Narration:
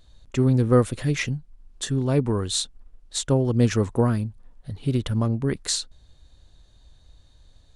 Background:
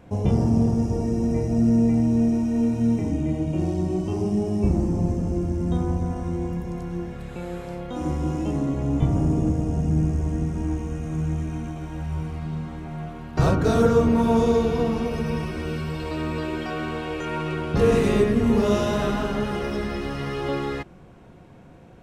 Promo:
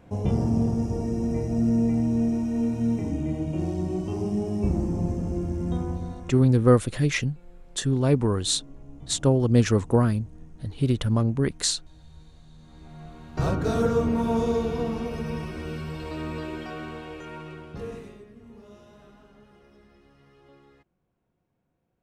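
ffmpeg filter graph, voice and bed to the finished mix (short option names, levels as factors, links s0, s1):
-filter_complex "[0:a]adelay=5950,volume=1.06[s0];[1:a]volume=5.62,afade=t=out:st=5.7:d=0.87:silence=0.1,afade=t=in:st=12.57:d=0.96:silence=0.11885,afade=t=out:st=16.35:d=1.83:silence=0.0668344[s1];[s0][s1]amix=inputs=2:normalize=0"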